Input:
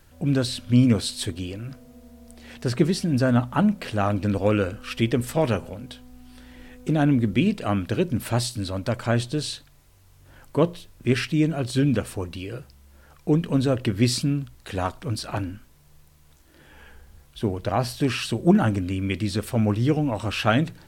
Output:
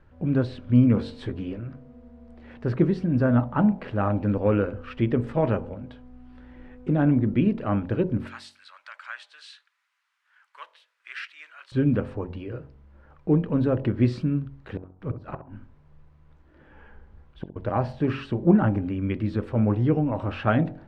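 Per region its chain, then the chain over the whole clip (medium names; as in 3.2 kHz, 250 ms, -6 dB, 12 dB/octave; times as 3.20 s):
0.95–1.59 s: doubling 15 ms -4 dB + loudspeaker Doppler distortion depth 0.14 ms
8.27–11.72 s: block-companded coder 7-bit + high-pass 1.4 kHz 24 dB/octave + treble shelf 6.5 kHz +12 dB
14.76–17.56 s: inverted gate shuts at -19 dBFS, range -33 dB + filtered feedback delay 66 ms, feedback 26%, low-pass 1.3 kHz, level -10 dB
whole clip: low-pass 1.5 kHz 12 dB/octave; band-stop 700 Hz, Q 16; de-hum 46.09 Hz, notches 22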